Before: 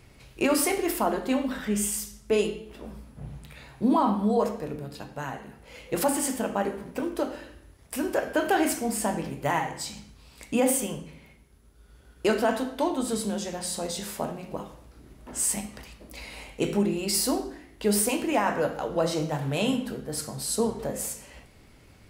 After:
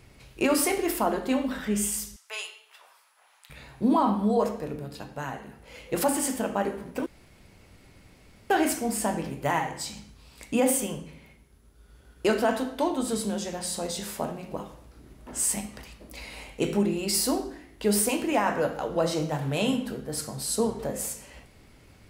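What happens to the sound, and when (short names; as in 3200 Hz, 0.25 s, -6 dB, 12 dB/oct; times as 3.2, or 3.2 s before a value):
2.16–3.5 HPF 920 Hz 24 dB/oct
7.06–8.5 room tone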